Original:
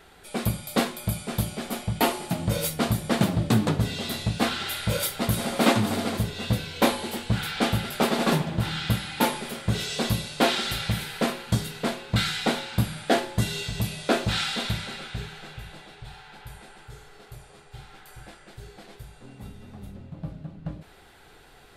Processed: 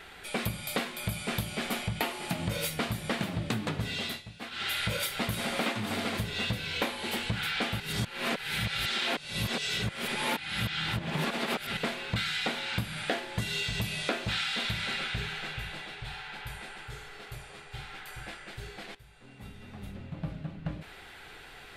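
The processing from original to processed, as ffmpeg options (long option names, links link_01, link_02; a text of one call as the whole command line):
ffmpeg -i in.wav -filter_complex "[0:a]asplit=6[link_01][link_02][link_03][link_04][link_05][link_06];[link_01]atrim=end=4.22,asetpts=PTS-STARTPTS,afade=type=out:start_time=3.88:duration=0.34:silence=0.0944061[link_07];[link_02]atrim=start=4.22:end=4.51,asetpts=PTS-STARTPTS,volume=-20.5dB[link_08];[link_03]atrim=start=4.51:end=7.802,asetpts=PTS-STARTPTS,afade=type=in:duration=0.34:silence=0.0944061[link_09];[link_04]atrim=start=7.798:end=11.772,asetpts=PTS-STARTPTS,areverse[link_10];[link_05]atrim=start=11.768:end=18.95,asetpts=PTS-STARTPTS,afade=type=out:start_time=7.178:duration=0.004:curve=hsin:silence=0.16788[link_11];[link_06]atrim=start=18.95,asetpts=PTS-STARTPTS,afade=type=in:duration=1.15:silence=0.16788[link_12];[link_07][link_08][link_09]concat=n=3:v=0:a=1[link_13];[link_13][link_10]acrossfade=duration=0.004:curve1=hsin:curve2=hsin[link_14];[link_11][link_12]concat=n=2:v=0:a=1[link_15];[link_14][link_15]acrossfade=duration=0.004:curve1=hsin:curve2=hsin,equalizer=frequency=2300:width=0.82:gain=9,acompressor=threshold=-28dB:ratio=10" out.wav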